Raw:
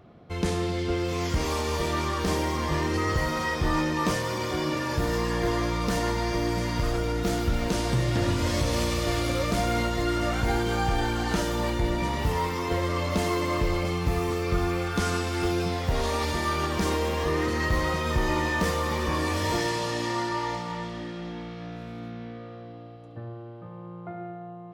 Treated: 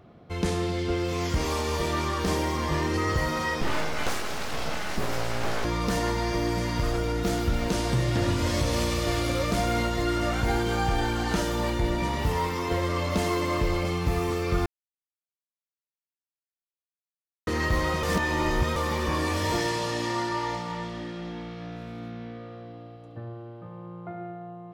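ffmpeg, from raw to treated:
ffmpeg -i in.wav -filter_complex "[0:a]asettb=1/sr,asplit=3[link_01][link_02][link_03];[link_01]atrim=end=3.614[link_04];[link_02]atrim=start=3.61:end=5.65,asetpts=PTS-STARTPTS,afade=type=in:duration=0.004:curve=qsin,afade=type=out:start_time=2.036:duration=0.004:curve=qsin,aeval=exprs='abs(val(0))':channel_layout=same[link_05];[link_03]atrim=start=5.646[link_06];[link_04][link_05]acrossfade=duration=0.004:curve1=hsin:curve2=qsin[link_07];[link_07][link_06]acrossfade=duration=0.004:curve1=qsin:curve2=hsin,asplit=5[link_08][link_09][link_10][link_11][link_12];[link_08]atrim=end=14.66,asetpts=PTS-STARTPTS,afade=type=out:start_time=14.656:duration=0.004:curve=hsin[link_13];[link_09]atrim=start=14.66:end=17.47,asetpts=PTS-STARTPTS,volume=0[link_14];[link_10]atrim=start=17.47:end=18.032,asetpts=PTS-STARTPTS,afade=type=in:duration=0.004:curve=hsin[link_15];[link_11]atrim=start=18.028:end=18.762,asetpts=PTS-STARTPTS,areverse[link_16];[link_12]atrim=start=18.758[link_17];[link_13][link_14][link_15]concat=n=3:v=0:a=1[link_18];[link_18][link_16]acrossfade=duration=0.004:curve1=hsin:curve2=hsin[link_19];[link_19][link_17]acrossfade=duration=0.004:curve1=hsin:curve2=hsin" out.wav

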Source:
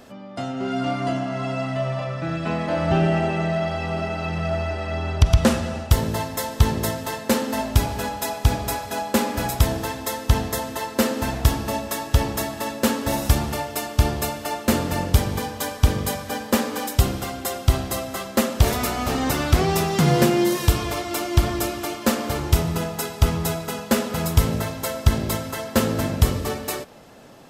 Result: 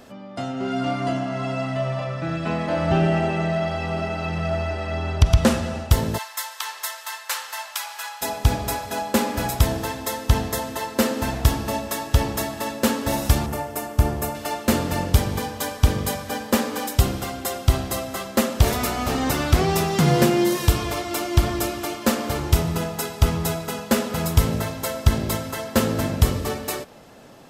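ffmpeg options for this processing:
ffmpeg -i in.wav -filter_complex "[0:a]asplit=3[link_01][link_02][link_03];[link_01]afade=type=out:start_time=6.17:duration=0.02[link_04];[link_02]highpass=frequency=990:width=0.5412,highpass=frequency=990:width=1.3066,afade=type=in:start_time=6.17:duration=0.02,afade=type=out:start_time=8.21:duration=0.02[link_05];[link_03]afade=type=in:start_time=8.21:duration=0.02[link_06];[link_04][link_05][link_06]amix=inputs=3:normalize=0,asettb=1/sr,asplit=3[link_07][link_08][link_09];[link_07]atrim=end=13.464[link_10];[link_08]atrim=start=13.46:end=14.35,asetpts=PTS-STARTPTS,afade=type=in:duration=0.004:curve=qsin,afade=type=out:start_time=0.886:duration=0.004:curve=qsin,equalizer=frequency=3900:width=0.79:gain=-9.5[link_11];[link_09]atrim=start=14.346[link_12];[link_10][link_11]acrossfade=duration=0.004:curve1=hsin:curve2=qsin[link_13];[link_13][link_12]acrossfade=duration=0.004:curve1=qsin:curve2=hsin" out.wav

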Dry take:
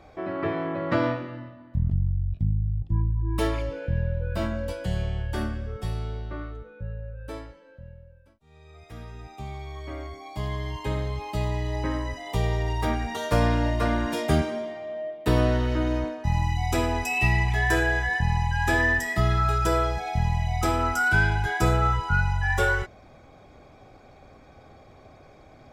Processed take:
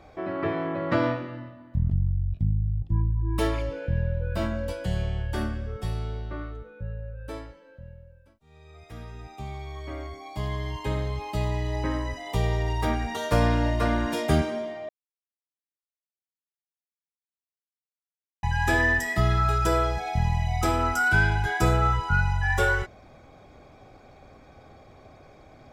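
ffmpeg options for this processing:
ffmpeg -i in.wav -filter_complex "[0:a]asplit=3[link_01][link_02][link_03];[link_01]atrim=end=14.89,asetpts=PTS-STARTPTS,afade=type=out:start_time=14.886:duration=0.004:curve=hsin[link_04];[link_02]atrim=start=14.89:end=18.43,asetpts=PTS-STARTPTS,volume=0[link_05];[link_03]atrim=start=18.43,asetpts=PTS-STARTPTS,afade=type=in:duration=0.004:curve=hsin[link_06];[link_04][link_05][link_06]concat=n=3:v=0:a=1" out.wav

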